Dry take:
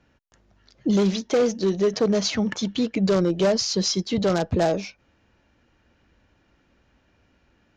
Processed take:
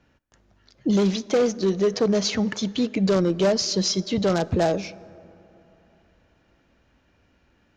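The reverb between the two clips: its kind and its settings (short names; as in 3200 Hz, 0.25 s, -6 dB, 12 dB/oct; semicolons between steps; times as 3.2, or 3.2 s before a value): plate-style reverb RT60 3.3 s, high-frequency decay 0.4×, DRR 19 dB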